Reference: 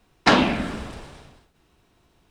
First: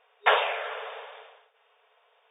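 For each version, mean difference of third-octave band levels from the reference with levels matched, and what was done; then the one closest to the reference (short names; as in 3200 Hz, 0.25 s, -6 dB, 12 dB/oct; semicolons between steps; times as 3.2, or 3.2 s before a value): 15.0 dB: FFT band-pass 410–3700 Hz; in parallel at +2.5 dB: compressor 12:1, threshold -34 dBFS, peak gain reduction 21 dB; on the sum: short-mantissa float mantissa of 6-bit; gain -4.5 dB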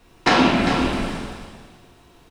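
7.5 dB: on a send: echo 0.396 s -12 dB; on the sum: compressor 2:1, threshold -30 dBFS, peak gain reduction 10 dB; plate-style reverb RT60 1.1 s, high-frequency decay 0.95×, DRR -2 dB; gain +6.5 dB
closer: second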